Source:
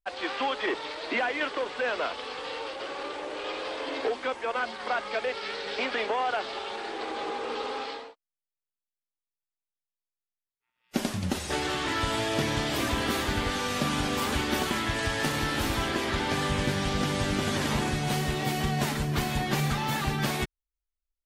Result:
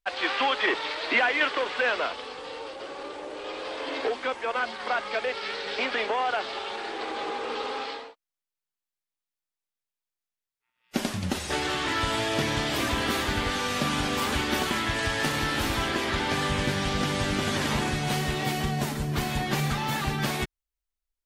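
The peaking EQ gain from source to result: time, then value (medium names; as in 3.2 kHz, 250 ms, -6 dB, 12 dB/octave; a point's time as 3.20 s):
peaking EQ 2.3 kHz 2.9 oct
1.84 s +7 dB
2.38 s -4.5 dB
3.41 s -4.5 dB
3.94 s +2.5 dB
18.49 s +2.5 dB
18.96 s -5 dB
19.26 s +1 dB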